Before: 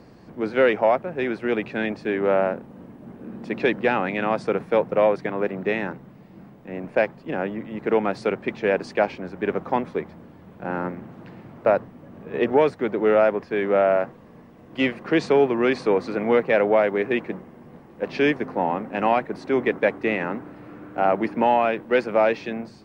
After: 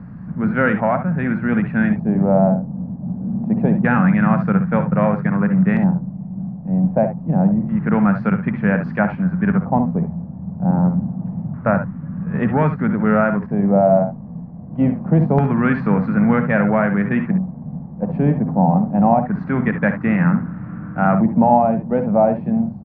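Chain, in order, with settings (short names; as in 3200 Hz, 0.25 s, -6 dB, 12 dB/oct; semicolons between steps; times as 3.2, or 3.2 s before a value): LFO low-pass square 0.26 Hz 740–1500 Hz; resonant low shelf 260 Hz +12.5 dB, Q 3; early reflections 58 ms -12.5 dB, 70 ms -11.5 dB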